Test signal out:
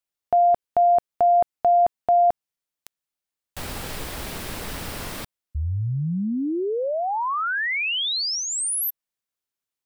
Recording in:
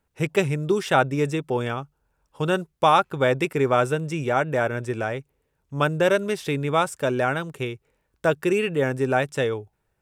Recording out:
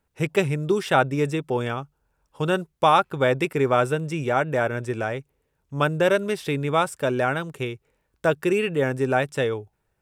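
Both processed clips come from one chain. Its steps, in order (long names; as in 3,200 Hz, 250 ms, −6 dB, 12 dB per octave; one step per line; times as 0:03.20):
dynamic equaliser 6,500 Hz, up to −4 dB, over −49 dBFS, Q 3.4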